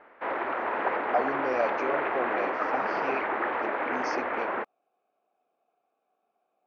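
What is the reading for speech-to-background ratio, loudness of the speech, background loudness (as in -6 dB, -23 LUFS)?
-5.0 dB, -34.5 LUFS, -29.5 LUFS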